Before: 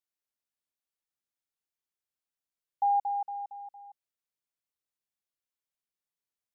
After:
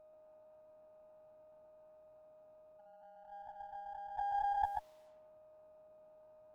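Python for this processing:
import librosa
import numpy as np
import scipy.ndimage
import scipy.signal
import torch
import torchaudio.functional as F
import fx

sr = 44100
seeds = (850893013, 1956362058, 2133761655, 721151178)

y = fx.spec_dilate(x, sr, span_ms=60)
y = y + 10.0 ** (-9.5 / 20.0) * np.pad(y, (int(700 * sr / 1000.0), 0))[:len(y)]
y = fx.level_steps(y, sr, step_db=12)
y = fx.curve_eq(y, sr, hz=(490.0, 870.0, 1300.0), db=(0, 12, -5))
y = fx.over_compress(y, sr, threshold_db=-59.0, ratio=-1.0)
y = fx.env_lowpass(y, sr, base_hz=550.0, full_db=-52.5)
y = y + 10.0 ** (-67.0 / 20.0) * np.sin(2.0 * np.pi * 620.0 * np.arange(len(y)) / sr)
y = y + 10.0 ** (-4.0 / 20.0) * np.pad(y, (int(135 * sr / 1000.0), 0))[:len(y)]
y = fx.running_max(y, sr, window=5)
y = y * librosa.db_to_amplitude(8.5)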